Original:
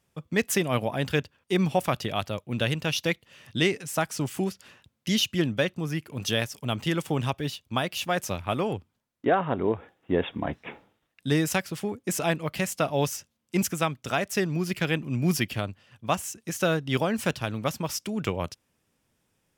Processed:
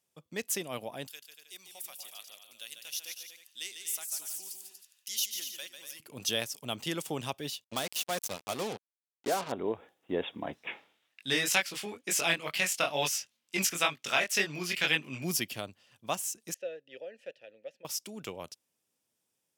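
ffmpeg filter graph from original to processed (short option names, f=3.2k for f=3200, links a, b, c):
-filter_complex "[0:a]asettb=1/sr,asplit=3[a][b][c];[a]atrim=end=1.074[d];[b]atrim=start=1.07:end=6,asetpts=PTS-STARTPTS,afade=t=in:d=0.004:c=qsin,afade=t=out:st=4.926:d=0.004:c=qsin,aderivative,aecho=1:1:146|239|315:0.422|0.335|0.188,atrim=end_sample=217413[e];[c]atrim=start=5.996[f];[d][e]acrossfade=d=0.004:c1=hsin:c2=qsin[g];[g][f]acrossfade=d=0.004:c1=qsin:c2=hsin,asettb=1/sr,asplit=3[h][i][j];[h]atrim=end=7.644[k];[i]atrim=start=7.64:end=9.52,asetpts=PTS-STARTPTS,afade=t=in:d=0.004:c=qsin,afade=t=out:st=1.876:d=0.004:c=qsin,bandreject=f=330:w=11,aeval=exprs='(tanh(5.01*val(0)+0.25)-tanh(0.25))/5.01':c=same,acrusher=bits=4:mix=0:aa=0.5[l];[j]atrim=start=9.516[m];[k][l]acrossfade=d=0.004:c1=hsin:c2=qsin[n];[n][m]acrossfade=d=0.004:c1=qsin:c2=hsin,asettb=1/sr,asplit=3[o][p][q];[o]atrim=end=10.674[r];[p]atrim=start=10.67:end=15.24,asetpts=PTS-STARTPTS,afade=t=in:d=0.004:c=qsin,afade=t=out:st=4.566:d=0.004:c=qsin,equalizer=f=2.3k:w=0.51:g=13,flanger=delay=19.5:depth=4:speed=2.1[s];[q]atrim=start=15.236[t];[r][s]acrossfade=d=0.004:c1=hsin:c2=qsin[u];[u][t]acrossfade=d=0.004:c1=qsin:c2=hsin,asettb=1/sr,asplit=3[v][w][x];[v]atrim=end=16.544[y];[w]atrim=start=16.54:end=17.85,asetpts=PTS-STARTPTS,afade=t=in:d=0.004:c=qsin,afade=t=out:st=1.306:d=0.004:c=qsin,asplit=3[z][aa][ab];[z]bandpass=f=530:t=q:w=8,volume=0dB[ac];[aa]bandpass=f=1.84k:t=q:w=8,volume=-6dB[ad];[ab]bandpass=f=2.48k:t=q:w=8,volume=-9dB[ae];[ac][ad][ae]amix=inputs=3:normalize=0,highshelf=f=8.5k:g=-10[af];[x]atrim=start=17.846[ag];[y][af]acrossfade=d=0.004:c1=hsin:c2=qsin[ah];[ah][ag]acrossfade=d=0.004:c1=qsin:c2=hsin,highpass=f=900:p=1,equalizer=f=1.6k:t=o:w=2.2:g=-10,dynaudnorm=f=670:g=11:m=5dB,volume=-2dB"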